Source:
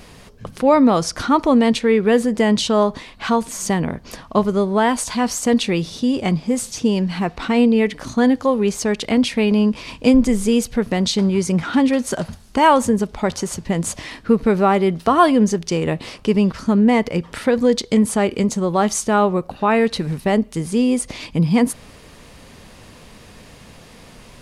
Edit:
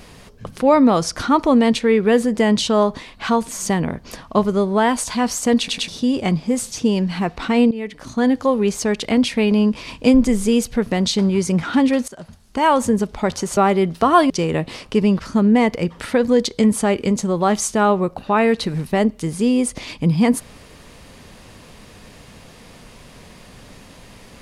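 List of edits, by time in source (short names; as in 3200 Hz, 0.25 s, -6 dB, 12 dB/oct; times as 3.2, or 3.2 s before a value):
5.58 stutter in place 0.10 s, 3 plays
7.71–8.41 fade in linear, from -15.5 dB
12.08–12.94 fade in linear, from -19.5 dB
13.57–14.62 cut
15.35–15.63 cut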